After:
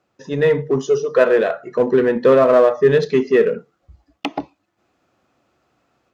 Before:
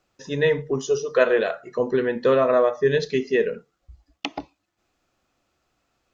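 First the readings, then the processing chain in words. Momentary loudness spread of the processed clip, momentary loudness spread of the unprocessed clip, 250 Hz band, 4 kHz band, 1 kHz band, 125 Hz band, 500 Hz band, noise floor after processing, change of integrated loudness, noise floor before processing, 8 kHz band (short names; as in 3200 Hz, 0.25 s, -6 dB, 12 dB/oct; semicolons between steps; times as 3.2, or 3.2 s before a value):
15 LU, 14 LU, +7.0 dB, 0.0 dB, +5.0 dB, +5.5 dB, +6.0 dB, -71 dBFS, +5.5 dB, -77 dBFS, n/a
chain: AGC gain up to 5 dB; HPF 100 Hz 12 dB/oct; high shelf 2500 Hz -10.5 dB; in parallel at -7.5 dB: overloaded stage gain 21 dB; on the sum: gain +1.5 dB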